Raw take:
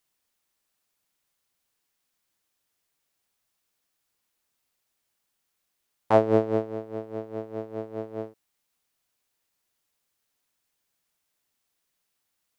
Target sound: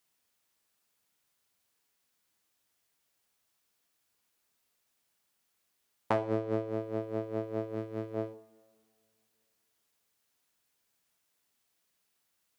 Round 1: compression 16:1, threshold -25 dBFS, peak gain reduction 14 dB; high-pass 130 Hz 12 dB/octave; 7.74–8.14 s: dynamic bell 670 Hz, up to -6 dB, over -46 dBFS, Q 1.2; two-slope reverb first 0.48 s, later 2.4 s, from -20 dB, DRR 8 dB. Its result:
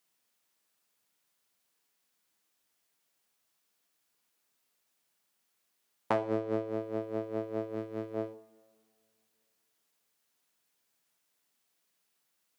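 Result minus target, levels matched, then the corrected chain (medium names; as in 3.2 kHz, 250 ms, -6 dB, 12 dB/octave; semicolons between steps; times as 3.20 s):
125 Hz band -4.0 dB
compression 16:1, threshold -25 dBFS, peak gain reduction 14 dB; high-pass 48 Hz 12 dB/octave; 7.74–8.14 s: dynamic bell 670 Hz, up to -6 dB, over -46 dBFS, Q 1.2; two-slope reverb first 0.48 s, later 2.4 s, from -20 dB, DRR 8 dB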